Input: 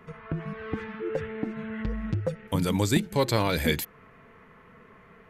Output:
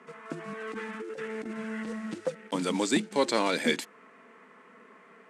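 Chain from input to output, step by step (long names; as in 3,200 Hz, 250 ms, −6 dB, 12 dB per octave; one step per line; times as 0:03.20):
one scale factor per block 5 bits
elliptic band-pass filter 230–8,800 Hz, stop band 40 dB
0:00.48–0:01.99: compressor whose output falls as the input rises −36 dBFS, ratio −1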